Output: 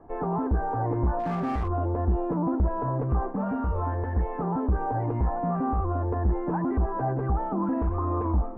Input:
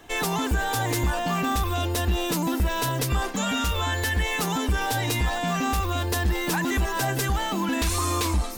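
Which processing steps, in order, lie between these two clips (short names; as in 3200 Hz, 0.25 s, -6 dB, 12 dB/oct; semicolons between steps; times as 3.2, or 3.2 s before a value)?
inverse Chebyshev low-pass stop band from 4600 Hz, stop band 70 dB; 1.19–1.68 hard clip -24.5 dBFS, distortion -25 dB; Doppler distortion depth 0.11 ms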